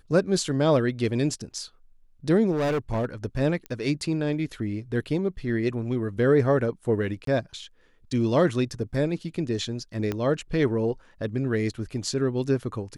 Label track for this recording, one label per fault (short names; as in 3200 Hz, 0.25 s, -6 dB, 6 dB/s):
2.510000	3.050000	clipped -22 dBFS
3.660000	3.660000	pop -21 dBFS
7.250000	7.270000	gap 23 ms
10.120000	10.120000	pop -15 dBFS